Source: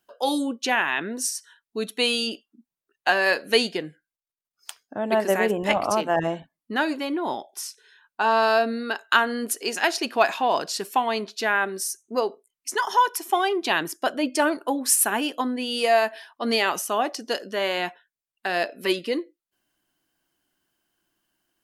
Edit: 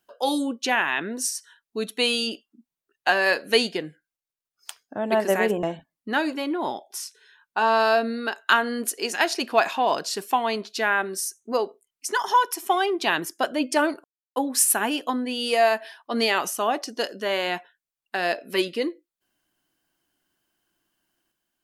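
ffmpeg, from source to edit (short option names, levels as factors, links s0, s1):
-filter_complex "[0:a]asplit=3[s0][s1][s2];[s0]atrim=end=5.632[s3];[s1]atrim=start=6.258:end=14.67,asetpts=PTS-STARTPTS,afade=t=out:st=8.408:d=0.004:c=hsin,apad=pad_dur=0.32[s4];[s2]atrim=start=14.67,asetpts=PTS-STARTPTS,afade=t=in:d=0.004:c=hsin[s5];[s4][s5]concat=n=2:v=0:a=1[s6];[s3][s6]acrossfade=d=0.004:c1=hsin:c2=hsin"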